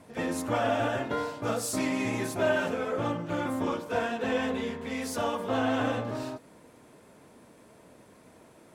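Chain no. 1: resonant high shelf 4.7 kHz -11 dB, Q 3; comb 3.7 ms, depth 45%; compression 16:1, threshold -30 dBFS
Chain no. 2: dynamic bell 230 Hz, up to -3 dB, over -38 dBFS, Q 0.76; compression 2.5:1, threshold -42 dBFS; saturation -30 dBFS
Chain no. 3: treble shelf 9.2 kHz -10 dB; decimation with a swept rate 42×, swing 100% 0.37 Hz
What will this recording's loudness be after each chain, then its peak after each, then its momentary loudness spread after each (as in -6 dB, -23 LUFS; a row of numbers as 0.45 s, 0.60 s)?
-34.5 LUFS, -41.5 LUFS, -30.5 LUFS; -20.5 dBFS, -31.0 dBFS, -17.0 dBFS; 20 LU, 15 LU, 7 LU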